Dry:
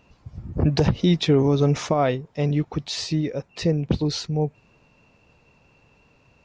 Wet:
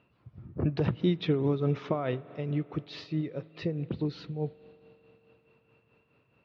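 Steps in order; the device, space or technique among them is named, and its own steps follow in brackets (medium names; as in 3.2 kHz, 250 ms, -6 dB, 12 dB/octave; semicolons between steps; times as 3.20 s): combo amplifier with spring reverb and tremolo (spring tank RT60 3.9 s, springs 44 ms, chirp 75 ms, DRR 16.5 dB; tremolo 4.7 Hz, depth 54%; cabinet simulation 99–3700 Hz, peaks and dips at 120 Hz +5 dB, 360 Hz +4 dB, 820 Hz -4 dB, 1.3 kHz +4 dB); trim -7.5 dB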